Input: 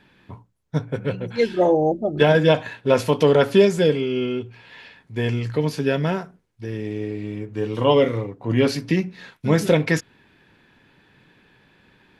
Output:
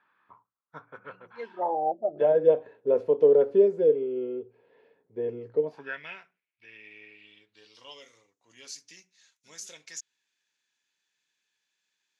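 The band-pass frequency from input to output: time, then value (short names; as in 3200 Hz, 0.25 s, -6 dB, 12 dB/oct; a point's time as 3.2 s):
band-pass, Q 4.9
1.25 s 1200 Hz
2.59 s 450 Hz
5.61 s 450 Hz
6.03 s 2400 Hz
7.07 s 2400 Hz
8.02 s 6600 Hz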